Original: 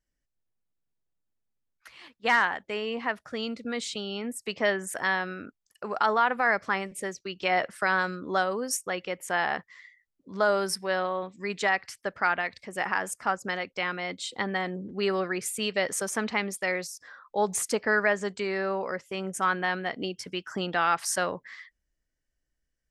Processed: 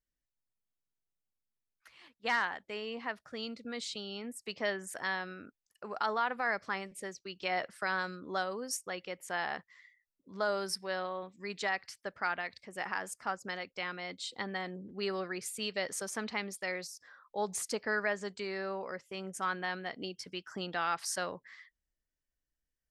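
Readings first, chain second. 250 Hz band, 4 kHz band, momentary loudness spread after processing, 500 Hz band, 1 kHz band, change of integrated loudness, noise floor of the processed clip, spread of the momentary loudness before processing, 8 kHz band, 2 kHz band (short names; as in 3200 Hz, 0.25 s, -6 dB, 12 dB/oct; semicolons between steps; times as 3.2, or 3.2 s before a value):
-8.5 dB, -5.5 dB, 10 LU, -8.5 dB, -8.5 dB, -8.0 dB, under -85 dBFS, 10 LU, -7.5 dB, -8.0 dB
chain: dynamic EQ 4500 Hz, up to +6 dB, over -51 dBFS, Q 1.9; gain -8.5 dB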